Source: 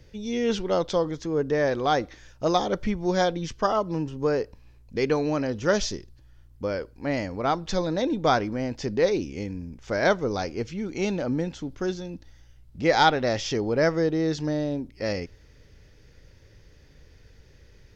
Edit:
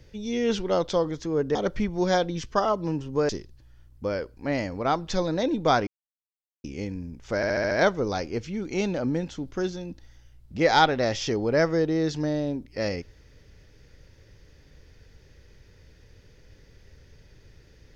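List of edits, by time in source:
0:01.55–0:02.62: remove
0:04.36–0:05.88: remove
0:08.46–0:09.23: silence
0:09.95: stutter 0.07 s, 6 plays

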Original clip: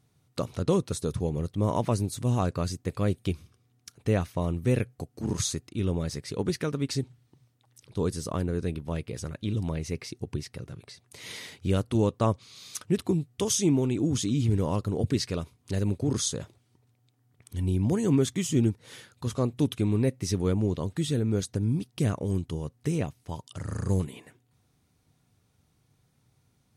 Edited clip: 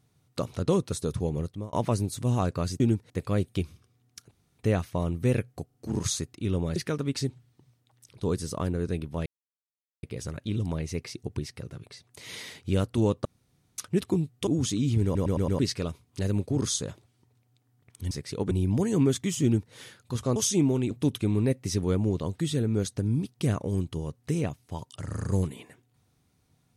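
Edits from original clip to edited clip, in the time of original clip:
0:01.40–0:01.73: fade out
0:04.01: splice in room tone 0.28 s
0:05.08: stutter 0.04 s, 3 plays
0:06.10–0:06.50: move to 0:17.63
0:09.00: splice in silence 0.77 s
0:12.22–0:12.75: fill with room tone
0:13.44–0:13.99: move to 0:19.48
0:14.56: stutter in place 0.11 s, 5 plays
0:18.55–0:18.85: duplicate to 0:02.80

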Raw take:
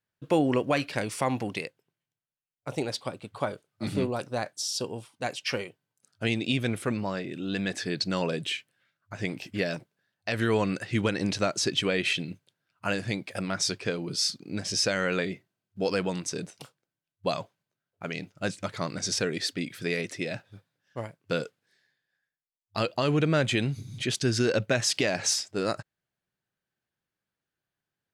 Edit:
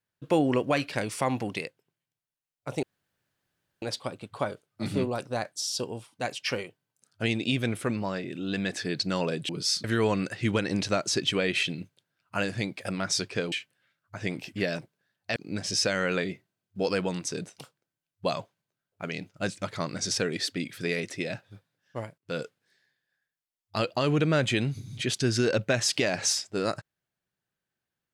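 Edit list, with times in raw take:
0:02.83: splice in room tone 0.99 s
0:08.50–0:10.34: swap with 0:14.02–0:14.37
0:21.19–0:21.45: fade in

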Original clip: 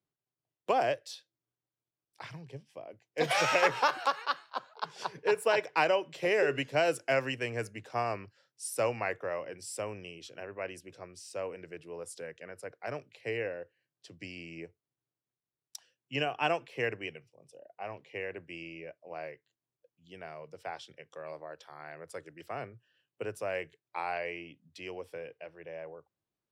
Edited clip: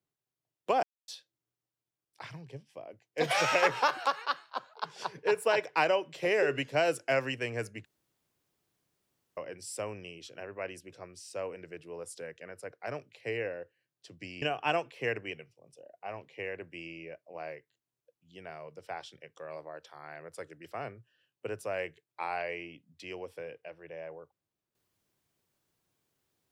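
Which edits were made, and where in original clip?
0:00.83–0:01.08: silence
0:07.85–0:09.37: fill with room tone
0:14.42–0:16.18: remove

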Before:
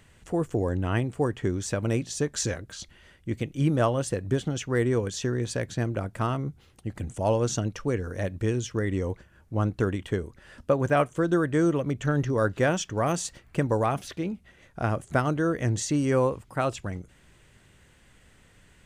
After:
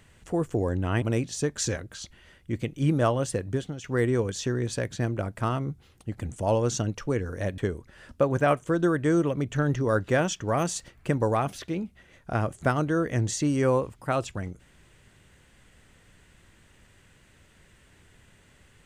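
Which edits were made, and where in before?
0:01.02–0:01.80: remove
0:04.16–0:04.62: fade out, to −10.5 dB
0:08.36–0:10.07: remove

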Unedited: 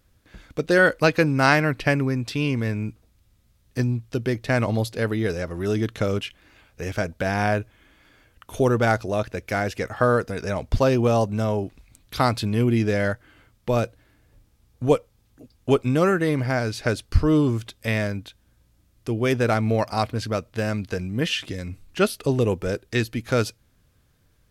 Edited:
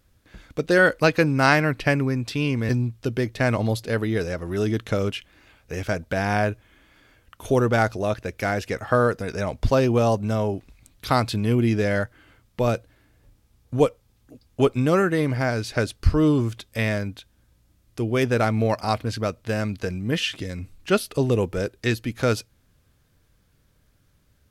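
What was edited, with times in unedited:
0:02.69–0:03.78: remove

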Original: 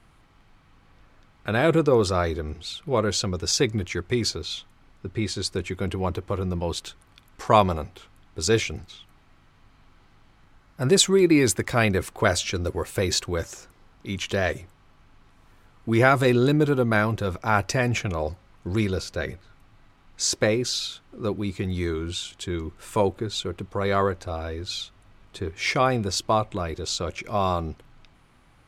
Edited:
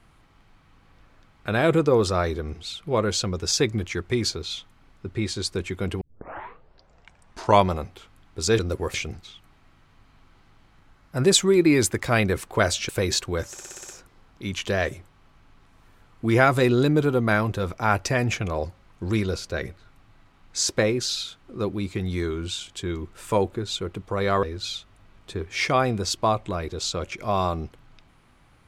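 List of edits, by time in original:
0:06.01: tape start 1.65 s
0:12.54–0:12.89: move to 0:08.59
0:13.52: stutter 0.06 s, 7 plays
0:24.07–0:24.49: remove

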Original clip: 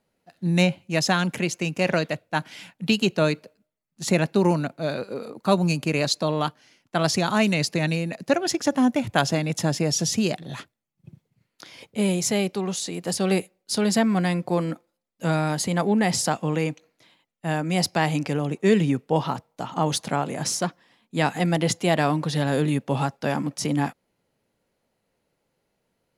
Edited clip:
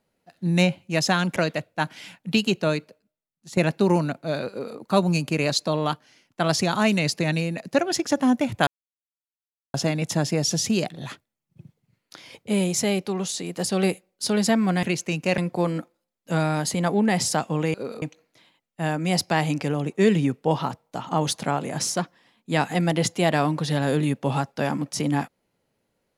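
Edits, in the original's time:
0:01.36–0:01.91: move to 0:14.31
0:02.91–0:04.12: fade out, to −13 dB
0:05.05–0:05.33: duplicate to 0:16.67
0:09.22: splice in silence 1.07 s

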